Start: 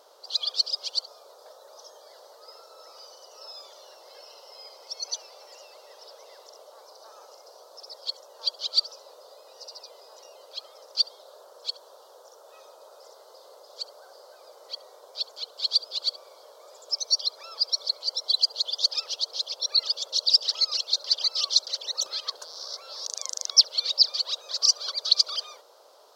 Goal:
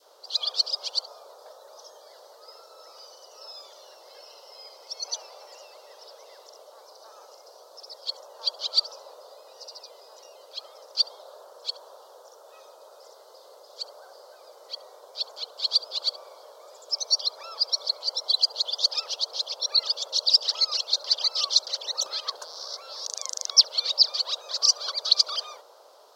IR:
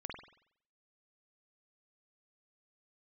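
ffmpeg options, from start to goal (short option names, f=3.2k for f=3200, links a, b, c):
-af "adynamicequalizer=threshold=0.00501:dfrequency=880:dqfactor=0.77:tfrequency=880:tqfactor=0.77:attack=5:release=100:ratio=0.375:range=3:mode=boostabove:tftype=bell"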